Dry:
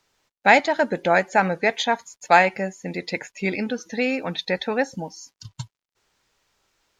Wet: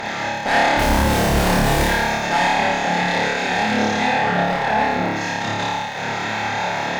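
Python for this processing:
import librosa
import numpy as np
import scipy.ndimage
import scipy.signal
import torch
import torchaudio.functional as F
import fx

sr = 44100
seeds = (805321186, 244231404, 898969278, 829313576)

p1 = fx.bin_compress(x, sr, power=0.2)
p2 = fx.schmitt(p1, sr, flips_db=-13.0, at=(0.77, 1.84))
p3 = fx.lowpass(p2, sr, hz=2000.0, slope=6, at=(4.04, 5.16))
p4 = fx.dmg_crackle(p3, sr, seeds[0], per_s=39.0, level_db=-26.0)
p5 = fx.chorus_voices(p4, sr, voices=4, hz=0.88, base_ms=28, depth_ms=1.2, mix_pct=40)
p6 = fx.tube_stage(p5, sr, drive_db=12.0, bias=0.25)
p7 = p6 + fx.room_flutter(p6, sr, wall_m=4.8, rt60_s=1.1, dry=0)
y = p7 * librosa.db_to_amplitude(-5.0)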